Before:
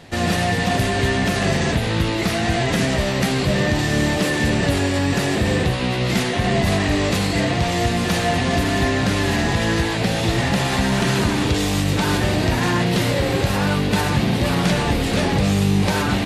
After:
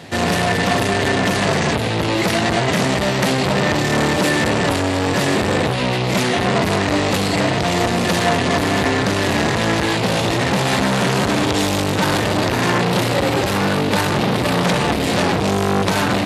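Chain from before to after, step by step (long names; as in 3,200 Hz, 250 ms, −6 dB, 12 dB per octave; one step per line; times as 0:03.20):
high-pass filter 96 Hz 12 dB per octave
saturating transformer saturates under 1,100 Hz
level +6.5 dB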